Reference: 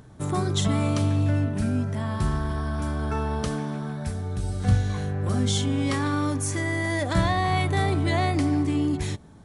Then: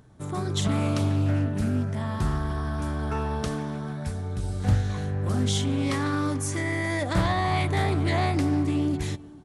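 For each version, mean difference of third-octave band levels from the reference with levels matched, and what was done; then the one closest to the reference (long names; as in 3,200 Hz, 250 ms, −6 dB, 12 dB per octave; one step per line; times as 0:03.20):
1.5 dB: automatic gain control gain up to 5 dB
slap from a distant wall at 76 metres, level −21 dB
highs frequency-modulated by the lows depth 0.35 ms
level −6 dB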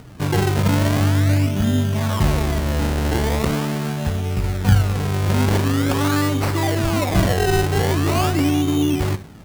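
6.0 dB: in parallel at 0 dB: speech leveller within 4 dB 0.5 s
on the sum: four-comb reverb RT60 0.39 s, combs from 31 ms, DRR 12 dB
sample-and-hold swept by an LFO 26×, swing 100% 0.43 Hz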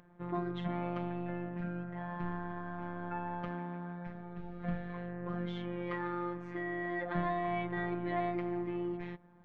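8.0 dB: low-pass filter 2,300 Hz 24 dB per octave
low-shelf EQ 190 Hz −8.5 dB
phases set to zero 175 Hz
level −5.5 dB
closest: first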